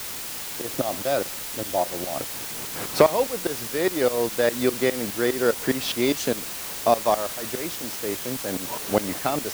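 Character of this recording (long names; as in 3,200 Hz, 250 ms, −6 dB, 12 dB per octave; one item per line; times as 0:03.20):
tremolo saw up 4.9 Hz, depth 90%
a quantiser's noise floor 6 bits, dither triangular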